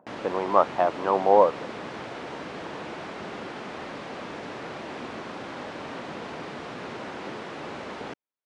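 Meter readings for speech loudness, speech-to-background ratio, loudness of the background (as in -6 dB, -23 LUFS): -23.0 LUFS, 14.0 dB, -37.0 LUFS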